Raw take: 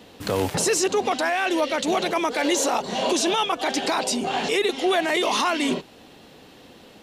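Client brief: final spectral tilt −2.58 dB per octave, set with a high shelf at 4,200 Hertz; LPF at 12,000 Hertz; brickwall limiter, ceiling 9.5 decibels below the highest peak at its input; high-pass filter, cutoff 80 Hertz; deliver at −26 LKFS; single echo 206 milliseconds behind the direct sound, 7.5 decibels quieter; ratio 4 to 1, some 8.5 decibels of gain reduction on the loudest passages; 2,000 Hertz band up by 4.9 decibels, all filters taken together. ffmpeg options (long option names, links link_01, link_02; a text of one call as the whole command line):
ffmpeg -i in.wav -af "highpass=80,lowpass=12000,equalizer=frequency=2000:width_type=o:gain=7,highshelf=frequency=4200:gain=-3.5,acompressor=threshold=-27dB:ratio=4,alimiter=limit=-23dB:level=0:latency=1,aecho=1:1:206:0.422,volume=5dB" out.wav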